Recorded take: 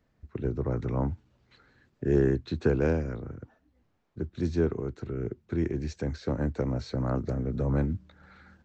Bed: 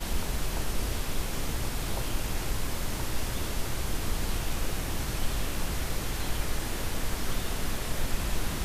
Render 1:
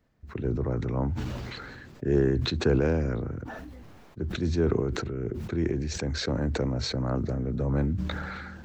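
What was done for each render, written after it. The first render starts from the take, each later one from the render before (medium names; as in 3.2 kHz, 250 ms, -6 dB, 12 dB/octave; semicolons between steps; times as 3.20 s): decay stretcher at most 25 dB/s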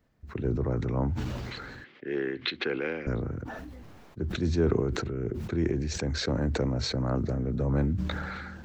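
1.84–3.07 s: cabinet simulation 430–4000 Hz, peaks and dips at 430 Hz -3 dB, 640 Hz -10 dB, 950 Hz -7 dB, 2.1 kHz +10 dB, 3.1 kHz +7 dB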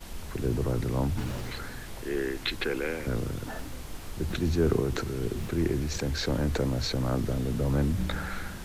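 add bed -10 dB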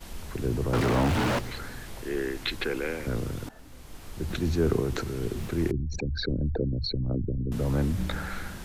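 0.73–1.39 s: overdrive pedal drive 39 dB, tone 1.3 kHz, clips at -16 dBFS; 3.49–4.37 s: fade in linear, from -17 dB; 5.71–7.52 s: resonances exaggerated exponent 3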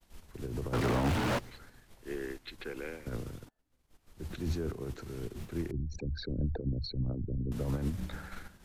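peak limiter -22.5 dBFS, peak gain reduction 9.5 dB; upward expansion 2.5:1, over -49 dBFS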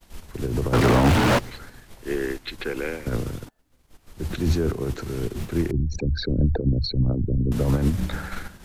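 trim +12 dB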